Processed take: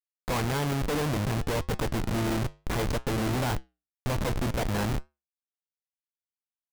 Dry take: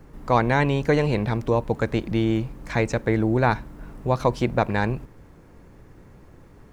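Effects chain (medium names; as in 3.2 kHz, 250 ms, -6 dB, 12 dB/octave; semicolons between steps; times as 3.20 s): Schmitt trigger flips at -29 dBFS; flange 0.59 Hz, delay 6.7 ms, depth 3.4 ms, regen -82%; trim +1.5 dB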